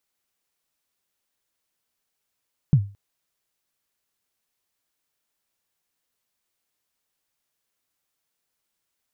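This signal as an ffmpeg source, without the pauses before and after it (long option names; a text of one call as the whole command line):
ffmpeg -f lavfi -i "aevalsrc='0.376*pow(10,-3*t/0.33)*sin(2*PI*(160*0.068/log(100/160)*(exp(log(100/160)*min(t,0.068)/0.068)-1)+100*max(t-0.068,0)))':duration=0.22:sample_rate=44100" out.wav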